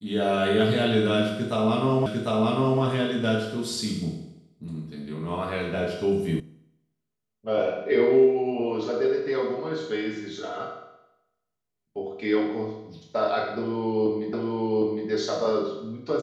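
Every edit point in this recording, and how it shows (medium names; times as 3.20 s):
2.06 s: repeat of the last 0.75 s
6.40 s: sound stops dead
14.33 s: repeat of the last 0.76 s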